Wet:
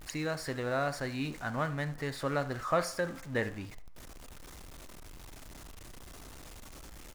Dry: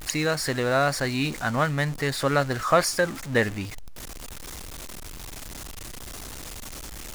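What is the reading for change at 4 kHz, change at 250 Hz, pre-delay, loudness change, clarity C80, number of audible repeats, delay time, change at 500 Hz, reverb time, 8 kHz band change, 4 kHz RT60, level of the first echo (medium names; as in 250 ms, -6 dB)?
-13.0 dB, -8.5 dB, 3 ms, -9.5 dB, 19.5 dB, 1, 74 ms, -9.0 dB, 0.55 s, -14.0 dB, 0.60 s, -17.0 dB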